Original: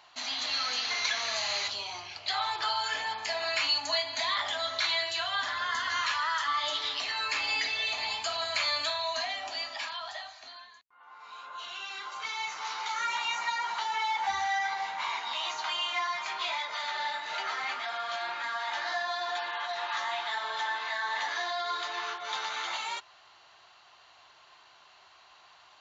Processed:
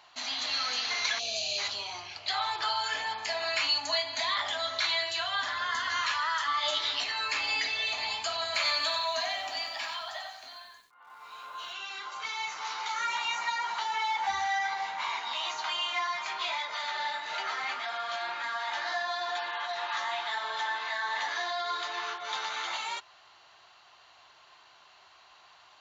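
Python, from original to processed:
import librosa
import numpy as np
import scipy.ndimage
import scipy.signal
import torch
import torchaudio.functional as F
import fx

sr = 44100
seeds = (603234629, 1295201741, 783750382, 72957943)

y = fx.spec_box(x, sr, start_s=1.19, length_s=0.39, low_hz=790.0, high_hz=2300.0, gain_db=-23)
y = fx.doubler(y, sr, ms=15.0, db=-2.0, at=(6.61, 7.04))
y = fx.echo_crushed(y, sr, ms=93, feedback_pct=35, bits=10, wet_db=-6, at=(8.44, 11.73))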